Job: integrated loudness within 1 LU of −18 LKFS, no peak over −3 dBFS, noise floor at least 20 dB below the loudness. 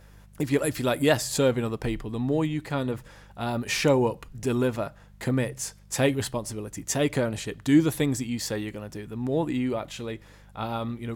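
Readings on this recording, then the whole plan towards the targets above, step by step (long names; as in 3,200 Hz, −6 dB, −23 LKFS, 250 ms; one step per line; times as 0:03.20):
mains hum 50 Hz; hum harmonics up to 200 Hz; level of the hum −50 dBFS; integrated loudness −27.0 LKFS; sample peak −8.5 dBFS; target loudness −18.0 LKFS
→ hum removal 50 Hz, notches 4
level +9 dB
brickwall limiter −3 dBFS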